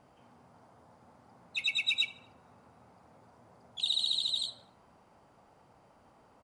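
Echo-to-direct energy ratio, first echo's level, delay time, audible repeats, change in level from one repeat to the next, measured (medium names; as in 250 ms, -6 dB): -22.5 dB, -23.5 dB, 80 ms, 2, -7.0 dB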